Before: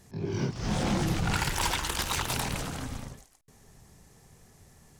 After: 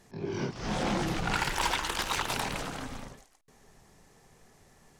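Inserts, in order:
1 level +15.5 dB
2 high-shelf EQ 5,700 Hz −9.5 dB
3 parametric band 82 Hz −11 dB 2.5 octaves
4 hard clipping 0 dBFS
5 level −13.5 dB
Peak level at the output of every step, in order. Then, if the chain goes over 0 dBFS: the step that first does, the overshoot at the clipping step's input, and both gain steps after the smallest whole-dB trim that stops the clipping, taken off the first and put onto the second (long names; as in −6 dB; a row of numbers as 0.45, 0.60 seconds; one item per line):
−4.0, −4.0, −3.5, −3.5, −17.0 dBFS
no step passes full scale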